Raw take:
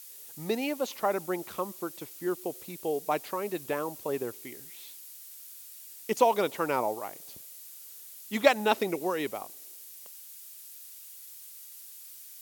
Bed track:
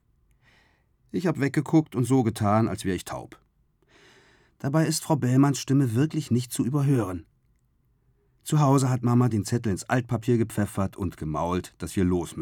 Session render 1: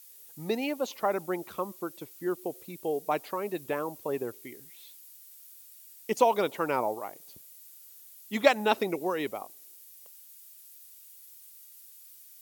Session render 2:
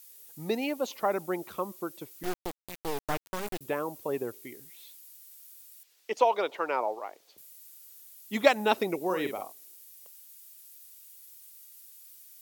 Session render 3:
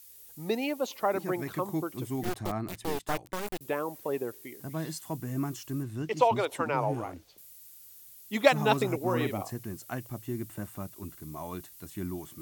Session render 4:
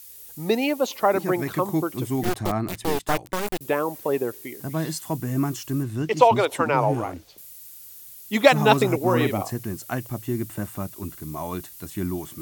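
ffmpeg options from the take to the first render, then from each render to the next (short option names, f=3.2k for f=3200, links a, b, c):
-af "afftdn=nr=7:nf=-48"
-filter_complex "[0:a]asettb=1/sr,asplit=3[a][b][c];[a]atrim=end=2.234[d];[b]atrim=start=2.23:end=3.61,asetpts=PTS-STARTPTS,afade=t=in:d=0.004:c=qsin,afade=t=out:st=1.376:d=0.004:c=qsin,acrusher=bits=3:dc=4:mix=0:aa=0.000001[e];[c]atrim=start=3.606[f];[d][e]acrossfade=d=0.004:c1=hsin:c2=qsin[g];[g][f]acrossfade=d=0.004:c1=qsin:c2=hsin,asettb=1/sr,asplit=3[h][i][j];[h]atrim=end=5.834[k];[i]atrim=start=5.83:end=7.38,asetpts=PTS-STARTPTS,afade=t=in:d=0.004:c=qsin,afade=t=out:st=1.546:d=0.004:c=qsin,acrossover=split=340 5600:gain=0.0891 1 0.141[l][m][n];[l][m][n]amix=inputs=3:normalize=0[o];[j]atrim=start=7.376[p];[k][o]acrossfade=d=0.004:c1=hsin:c2=qsin[q];[q][p]acrossfade=d=0.004:c1=qsin:c2=hsin,asettb=1/sr,asplit=3[r][s][t];[r]atrim=end=9.054[u];[s]atrim=start=9.05:end=9.53,asetpts=PTS-STARTPTS,afade=t=in:d=0.004:c=qsin,afade=t=out:st=0.476:d=0.004:c=qsin,asplit=2[v][w];[w]adelay=49,volume=-7dB[x];[v][x]amix=inputs=2:normalize=0,atrim=end_sample=21168[y];[t]atrim=start=9.526[z];[u][y]acrossfade=d=0.004:c1=hsin:c2=qsin[aa];[aa][z]acrossfade=d=0.004:c1=qsin:c2=hsin"
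-filter_complex "[1:a]volume=-12.5dB[a];[0:a][a]amix=inputs=2:normalize=0"
-af "volume=8dB,alimiter=limit=-1dB:level=0:latency=1"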